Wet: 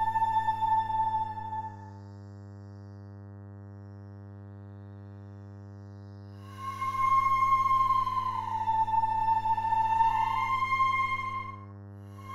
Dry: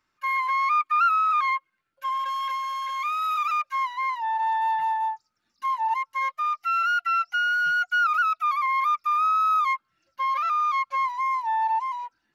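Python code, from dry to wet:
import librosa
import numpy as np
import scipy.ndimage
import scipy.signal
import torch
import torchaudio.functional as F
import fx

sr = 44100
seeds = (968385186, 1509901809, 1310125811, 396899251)

y = np.where(x < 0.0, 10.0 ** (-3.0 / 20.0) * x, x)
y = fx.paulstretch(y, sr, seeds[0], factor=11.0, window_s=0.1, from_s=5.01)
y = fx.dmg_buzz(y, sr, base_hz=100.0, harmonics=19, level_db=-45.0, tilt_db=-8, odd_only=False)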